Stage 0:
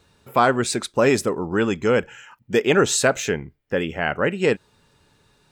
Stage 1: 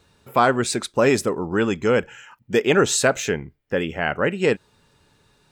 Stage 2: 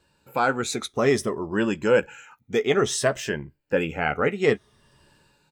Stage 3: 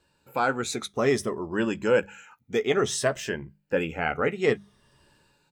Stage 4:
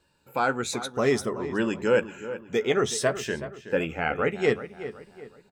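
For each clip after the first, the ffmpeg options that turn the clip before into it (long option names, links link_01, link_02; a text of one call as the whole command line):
ffmpeg -i in.wav -af anull out.wav
ffmpeg -i in.wav -filter_complex "[0:a]afftfilt=real='re*pow(10,9/40*sin(2*PI*(1.3*log(max(b,1)*sr/1024/100)/log(2)-(-0.58)*(pts-256)/sr)))':imag='im*pow(10,9/40*sin(2*PI*(1.3*log(max(b,1)*sr/1024/100)/log(2)-(-0.58)*(pts-256)/sr)))':win_size=1024:overlap=0.75,asplit=2[link_01][link_02];[link_02]adelay=14,volume=-11dB[link_03];[link_01][link_03]amix=inputs=2:normalize=0,dynaudnorm=framelen=110:gausssize=9:maxgain=13dB,volume=-7.5dB" out.wav
ffmpeg -i in.wav -af "bandreject=frequency=50:width_type=h:width=6,bandreject=frequency=100:width_type=h:width=6,bandreject=frequency=150:width_type=h:width=6,bandreject=frequency=200:width_type=h:width=6,volume=-2.5dB" out.wav
ffmpeg -i in.wav -filter_complex "[0:a]asplit=2[link_01][link_02];[link_02]adelay=373,lowpass=frequency=2700:poles=1,volume=-12.5dB,asplit=2[link_03][link_04];[link_04]adelay=373,lowpass=frequency=2700:poles=1,volume=0.4,asplit=2[link_05][link_06];[link_06]adelay=373,lowpass=frequency=2700:poles=1,volume=0.4,asplit=2[link_07][link_08];[link_08]adelay=373,lowpass=frequency=2700:poles=1,volume=0.4[link_09];[link_01][link_03][link_05][link_07][link_09]amix=inputs=5:normalize=0" out.wav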